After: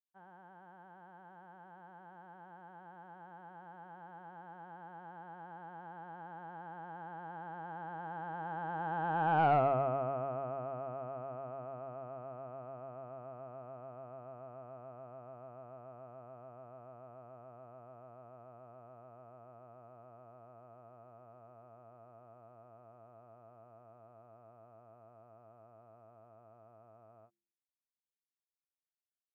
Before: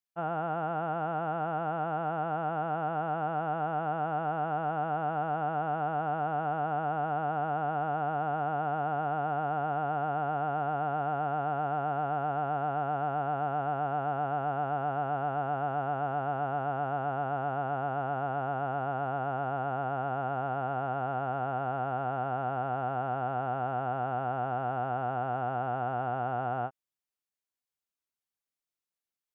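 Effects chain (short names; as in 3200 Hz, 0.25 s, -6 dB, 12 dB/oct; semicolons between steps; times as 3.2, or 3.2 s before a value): Doppler pass-by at 9.49, 38 m/s, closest 5.4 m; de-hum 68.75 Hz, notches 5; in parallel at +1 dB: compressor, threshold -59 dBFS, peak gain reduction 27.5 dB; on the sum: soft clip -25.5 dBFS, distortion -17 dB; air absorption 180 m; gain +7 dB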